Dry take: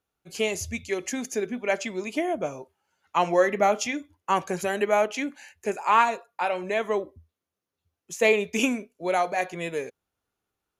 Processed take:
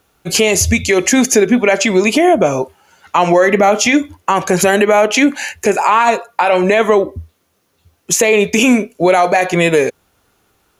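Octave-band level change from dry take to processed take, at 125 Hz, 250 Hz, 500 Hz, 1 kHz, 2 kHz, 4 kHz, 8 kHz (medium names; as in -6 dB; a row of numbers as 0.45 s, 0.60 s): +18.5 dB, +17.0 dB, +13.5 dB, +11.0 dB, +13.5 dB, +15.5 dB, +19.0 dB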